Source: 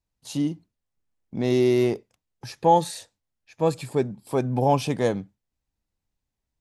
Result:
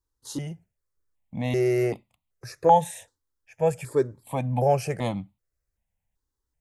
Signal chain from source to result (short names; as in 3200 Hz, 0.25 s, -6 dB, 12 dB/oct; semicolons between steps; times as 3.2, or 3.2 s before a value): step phaser 2.6 Hz 670–1600 Hz; gain +2 dB